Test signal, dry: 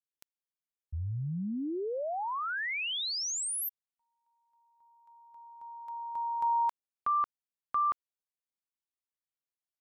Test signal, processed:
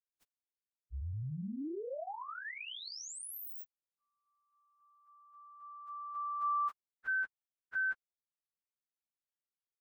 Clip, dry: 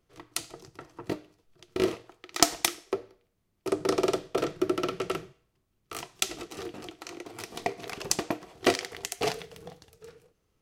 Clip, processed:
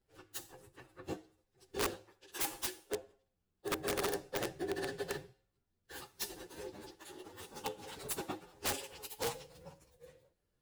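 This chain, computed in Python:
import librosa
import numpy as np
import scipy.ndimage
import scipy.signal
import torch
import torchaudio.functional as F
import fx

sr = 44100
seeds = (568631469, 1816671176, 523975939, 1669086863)

y = fx.partial_stretch(x, sr, pct=117)
y = (np.mod(10.0 ** (23.0 / 20.0) * y + 1.0, 2.0) - 1.0) / 10.0 ** (23.0 / 20.0)
y = y * 10.0 ** (-4.5 / 20.0)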